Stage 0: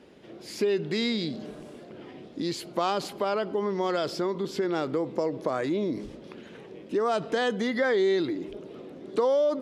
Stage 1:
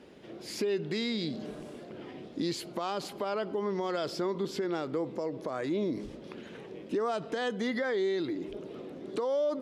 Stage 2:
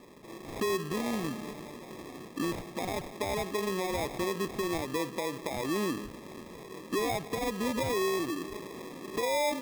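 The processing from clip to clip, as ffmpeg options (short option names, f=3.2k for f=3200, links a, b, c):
-af "alimiter=limit=-22.5dB:level=0:latency=1:release=468"
-af "acrusher=samples=30:mix=1:aa=0.000001"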